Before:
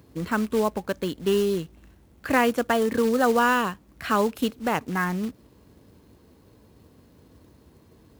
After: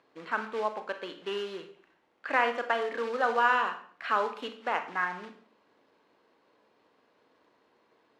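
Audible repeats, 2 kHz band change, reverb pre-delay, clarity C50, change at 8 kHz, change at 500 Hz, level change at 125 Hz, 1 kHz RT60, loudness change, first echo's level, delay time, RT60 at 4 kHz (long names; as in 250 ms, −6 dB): no echo audible, −2.0 dB, 28 ms, 10.0 dB, below −15 dB, −8.5 dB, below −20 dB, 0.45 s, −6.0 dB, no echo audible, no echo audible, 0.45 s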